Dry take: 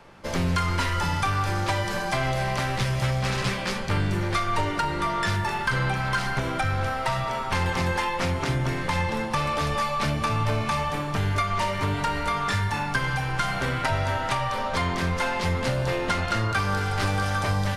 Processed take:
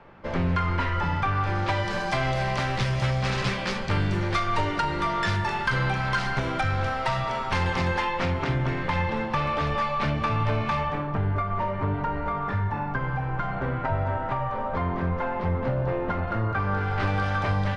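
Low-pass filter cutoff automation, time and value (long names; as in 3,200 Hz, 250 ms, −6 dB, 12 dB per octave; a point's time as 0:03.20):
0:01.33 2,300 Hz
0:02.03 5,600 Hz
0:07.58 5,600 Hz
0:08.51 3,100 Hz
0:10.76 3,100 Hz
0:11.22 1,200 Hz
0:16.45 1,200 Hz
0:17.17 3,000 Hz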